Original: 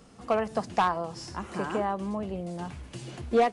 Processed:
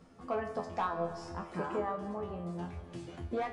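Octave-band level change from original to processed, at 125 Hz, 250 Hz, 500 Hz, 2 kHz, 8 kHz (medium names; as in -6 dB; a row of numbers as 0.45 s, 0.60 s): -4.5 dB, -7.5 dB, -7.5 dB, -8.0 dB, -12.5 dB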